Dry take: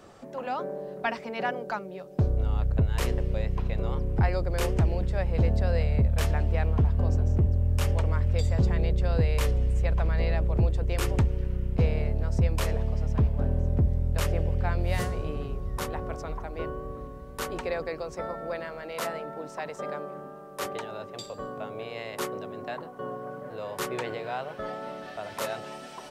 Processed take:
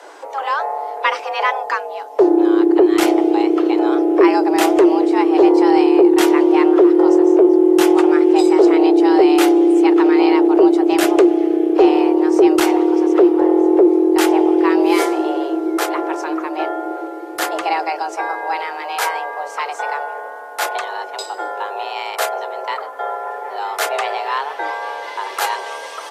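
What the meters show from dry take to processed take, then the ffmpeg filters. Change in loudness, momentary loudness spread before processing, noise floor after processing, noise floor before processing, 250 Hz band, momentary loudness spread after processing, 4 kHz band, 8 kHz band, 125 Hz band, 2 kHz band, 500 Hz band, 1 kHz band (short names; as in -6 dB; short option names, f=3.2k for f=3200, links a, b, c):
+14.0 dB, 12 LU, -31 dBFS, -43 dBFS, +22.5 dB, 14 LU, +13.5 dB, +12.5 dB, under -25 dB, +13.5 dB, +18.5 dB, +17.5 dB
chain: -af "afreqshift=280,acontrast=58,volume=5.5dB" -ar 32000 -c:a aac -b:a 48k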